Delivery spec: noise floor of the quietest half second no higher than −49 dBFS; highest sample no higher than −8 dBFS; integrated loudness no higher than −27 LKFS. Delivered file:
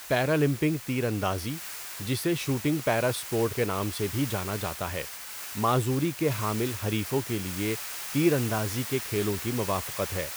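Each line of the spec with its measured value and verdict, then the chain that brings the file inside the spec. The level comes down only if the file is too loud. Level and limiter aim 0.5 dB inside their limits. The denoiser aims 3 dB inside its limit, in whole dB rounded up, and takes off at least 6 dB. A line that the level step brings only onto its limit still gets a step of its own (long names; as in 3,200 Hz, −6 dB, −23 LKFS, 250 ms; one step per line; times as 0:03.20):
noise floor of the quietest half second −39 dBFS: out of spec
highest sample −10.5 dBFS: in spec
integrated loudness −28.5 LKFS: in spec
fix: broadband denoise 13 dB, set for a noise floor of −39 dBFS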